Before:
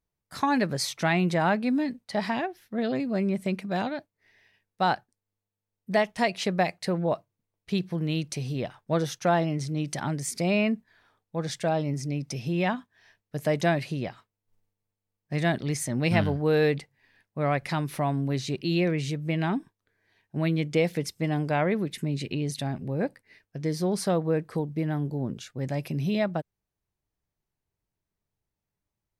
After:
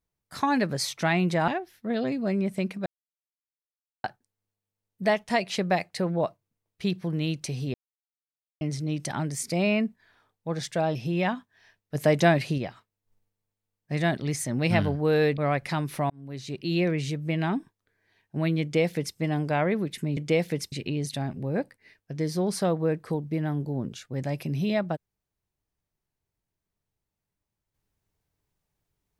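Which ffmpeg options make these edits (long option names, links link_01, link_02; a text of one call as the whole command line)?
ffmpeg -i in.wav -filter_complex "[0:a]asplit=13[link_01][link_02][link_03][link_04][link_05][link_06][link_07][link_08][link_09][link_10][link_11][link_12][link_13];[link_01]atrim=end=1.482[link_14];[link_02]atrim=start=2.358:end=3.74,asetpts=PTS-STARTPTS,afade=type=out:start_time=1.378:duration=0.004:curve=hsin[link_15];[link_03]atrim=start=3.74:end=4.92,asetpts=PTS-STARTPTS,volume=0[link_16];[link_04]atrim=start=4.92:end=8.62,asetpts=PTS-STARTPTS,afade=type=in:duration=0.004:curve=hsin,afade=type=out:start_time=3.696:duration=0.004:curve=hsin[link_17];[link_05]atrim=start=8.62:end=9.49,asetpts=PTS-STARTPTS,volume=0[link_18];[link_06]atrim=start=9.49:end=11.832,asetpts=PTS-STARTPTS,afade=type=in:duration=0.004:curve=hsin[link_19];[link_07]atrim=start=12.358:end=13.362[link_20];[link_08]atrim=start=13.358:end=13.992,asetpts=PTS-STARTPTS,volume=4dB[link_21];[link_09]atrim=start=13.988:end=16.792[link_22];[link_10]atrim=start=17.378:end=18.1,asetpts=PTS-STARTPTS,afade=type=out:start_time=0.718:duration=0.004:curve=hsin[link_23];[link_11]atrim=start=18.1:end=22.172,asetpts=PTS-STARTPTS,afade=type=in:duration=0.7[link_24];[link_12]atrim=start=20.618:end=21.172[link_25];[link_13]atrim=start=22.168[link_26];[link_15][link_16][link_17][link_18][link_19]concat=n=5:v=0:a=1[link_27];[link_14][link_27]acrossfade=duration=0.004:curve1=hsin:curve2=hsin[link_28];[link_28][link_20]acrossfade=duration=0.004:curve1=hsin:curve2=hsin[link_29];[link_29][link_21]acrossfade=duration=0.004:curve1=hsin:curve2=hsin[link_30];[link_30][link_22]acrossfade=duration=0.004:curve1=hsin:curve2=hsin[link_31];[link_23][link_24]concat=n=2:v=0:a=1[link_32];[link_31][link_32]acrossfade=duration=0.004:curve1=hsin:curve2=hsin[link_33];[link_33][link_25]acrossfade=duration=0.004:curve1=hsin:curve2=hsin[link_34];[link_34][link_26]acrossfade=duration=0.004:curve1=hsin:curve2=hsin" out.wav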